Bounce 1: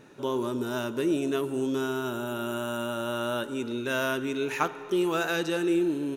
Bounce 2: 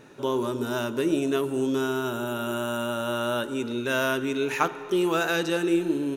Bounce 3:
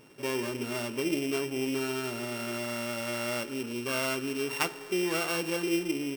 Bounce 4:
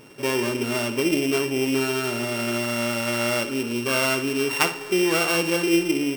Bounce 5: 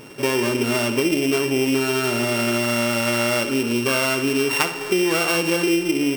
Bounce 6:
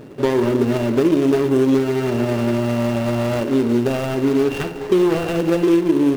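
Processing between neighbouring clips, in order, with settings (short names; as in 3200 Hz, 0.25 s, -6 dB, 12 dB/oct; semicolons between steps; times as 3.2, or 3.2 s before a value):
notches 50/100/150/200/250/300/350 Hz; gain +3 dB
sample sorter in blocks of 16 samples; gain -5.5 dB
flutter echo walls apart 10.2 m, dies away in 0.3 s; gain +8 dB
compressor, threshold -23 dBFS, peak gain reduction 8.5 dB; gain +6.5 dB
median filter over 41 samples; gain +5.5 dB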